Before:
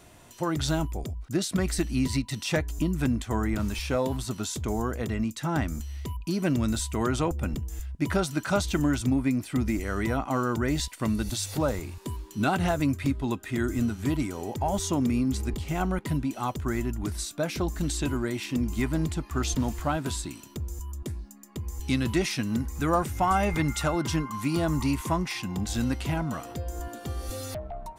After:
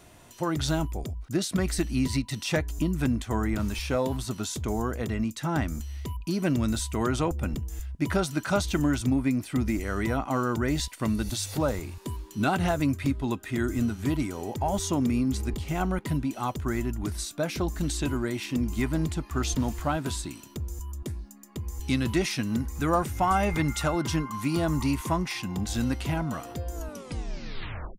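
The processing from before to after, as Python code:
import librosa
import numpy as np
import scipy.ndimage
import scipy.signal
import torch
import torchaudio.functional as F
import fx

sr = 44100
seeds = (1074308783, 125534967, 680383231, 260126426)

y = fx.tape_stop_end(x, sr, length_s=1.25)
y = fx.notch(y, sr, hz=7600.0, q=27.0)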